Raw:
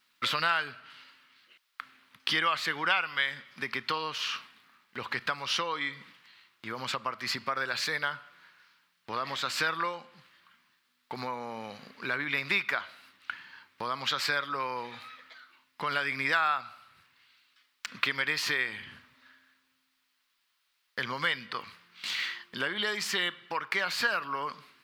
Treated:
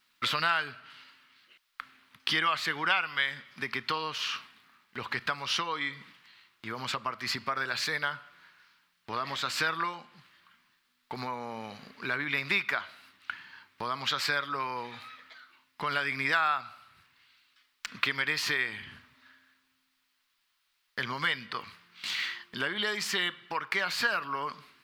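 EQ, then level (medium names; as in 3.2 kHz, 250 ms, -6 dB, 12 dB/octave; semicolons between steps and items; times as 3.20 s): bass shelf 74 Hz +8.5 dB; band-stop 520 Hz, Q 12; 0.0 dB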